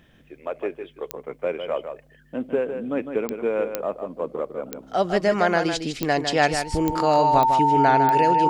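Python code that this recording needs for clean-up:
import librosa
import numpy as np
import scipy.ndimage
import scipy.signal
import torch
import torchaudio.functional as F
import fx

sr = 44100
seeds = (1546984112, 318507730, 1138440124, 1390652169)

y = fx.fix_declick_ar(x, sr, threshold=10.0)
y = fx.notch(y, sr, hz=900.0, q=30.0)
y = fx.fix_echo_inverse(y, sr, delay_ms=155, level_db=-8.0)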